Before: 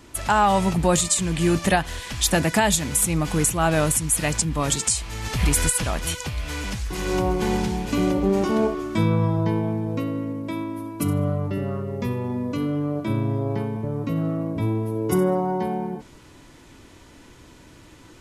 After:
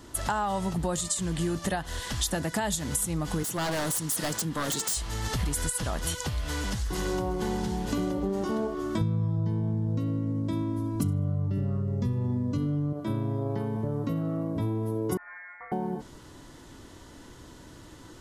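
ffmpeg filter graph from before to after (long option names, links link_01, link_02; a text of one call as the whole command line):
ffmpeg -i in.wav -filter_complex "[0:a]asettb=1/sr,asplit=3[link_01][link_02][link_03];[link_01]atrim=end=3.434[link_04];[link_02]atrim=start=3.43:end=4.97,asetpts=PTS-STARTPTS,afade=type=in:duration=0.004:curve=qsin,afade=type=out:start_time=1.536:duration=0.004:curve=qsin,highpass=190,aeval=exprs='0.0944*(abs(mod(val(0)/0.0944+3,4)-2)-1)':channel_layout=same[link_05];[link_03]atrim=start=4.966[link_06];[link_04][link_05]acrossfade=duration=0.004:curve1=hsin:curve2=qsin[link_07];[link_07][link_06]acrossfade=duration=0.004:curve1=qsin:curve2=hsin,asettb=1/sr,asplit=3[link_08][link_09][link_10];[link_08]atrim=end=9.014[link_11];[link_09]atrim=start=9.01:end=12.93,asetpts=PTS-STARTPTS,afade=type=in:duration=0.004:curve=qsin,afade=type=out:start_time=3.916:duration=0.004:curve=qsin,adynamicsmooth=sensitivity=4:basefreq=6100,bass=frequency=250:gain=14,treble=frequency=4000:gain=11[link_12];[link_10]atrim=start=12.926[link_13];[link_11][link_12]acrossfade=duration=0.004:curve1=hsin:curve2=qsin[link_14];[link_14][link_13]acrossfade=duration=0.004:curve1=qsin:curve2=hsin,asettb=1/sr,asplit=3[link_15][link_16][link_17];[link_15]atrim=end=15.174[link_18];[link_16]atrim=start=15.17:end=15.72,asetpts=PTS-STARTPTS,afade=type=in:duration=0.004:curve=qsin,afade=type=out:start_time=0.546:duration=0.004:curve=qsin,highpass=frequency=1300:width=0.5412,highpass=frequency=1300:width=1.3066,aecho=1:1:7:0.65,atrim=end_sample=24255,lowpass=frequency=2500:width_type=q:width=0.5098,lowpass=frequency=2500:width_type=q:width=0.6013,lowpass=frequency=2500:width_type=q:width=0.9,lowpass=frequency=2500:width_type=q:width=2.563,afreqshift=-2900[link_19];[link_17]atrim=start=15.716[link_20];[link_18][link_19]acrossfade=duration=0.004:curve1=hsin:curve2=qsin[link_21];[link_21][link_20]acrossfade=duration=0.004:curve1=qsin:curve2=hsin,equalizer=frequency=2400:width=4.7:gain=-11,acompressor=threshold=-26dB:ratio=6" out.wav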